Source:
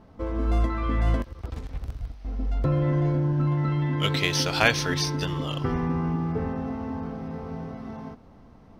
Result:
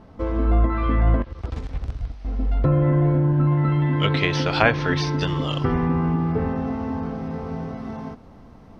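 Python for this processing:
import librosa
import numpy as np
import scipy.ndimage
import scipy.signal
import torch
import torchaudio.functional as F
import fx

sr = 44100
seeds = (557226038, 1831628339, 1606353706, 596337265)

y = fx.env_lowpass_down(x, sr, base_hz=1700.0, full_db=-18.5)
y = fx.high_shelf(y, sr, hz=11000.0, db=fx.steps((0.0, -9.5), (5.23, 2.0)))
y = F.gain(torch.from_numpy(y), 5.0).numpy()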